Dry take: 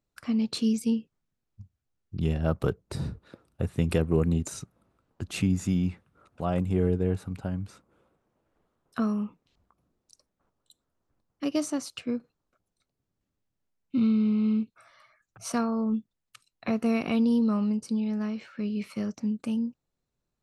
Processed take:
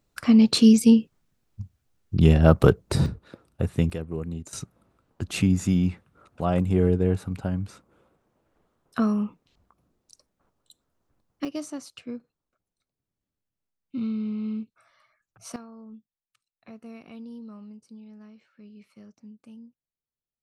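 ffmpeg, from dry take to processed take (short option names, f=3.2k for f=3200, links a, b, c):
-af "asetnsamples=n=441:p=0,asendcmd='3.06 volume volume 3.5dB;3.9 volume volume -8dB;4.53 volume volume 4dB;11.45 volume volume -5.5dB;15.56 volume volume -17.5dB',volume=10.5dB"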